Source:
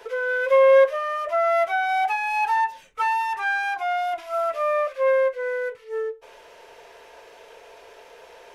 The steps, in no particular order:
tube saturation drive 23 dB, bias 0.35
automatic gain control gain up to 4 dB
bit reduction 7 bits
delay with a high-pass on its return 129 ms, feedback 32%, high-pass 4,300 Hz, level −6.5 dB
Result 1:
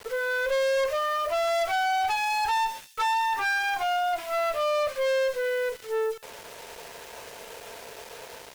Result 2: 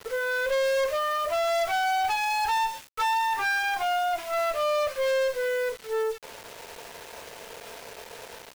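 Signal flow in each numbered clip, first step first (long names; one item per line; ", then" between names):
automatic gain control, then bit reduction, then tube saturation, then delay with a high-pass on its return
automatic gain control, then tube saturation, then delay with a high-pass on its return, then bit reduction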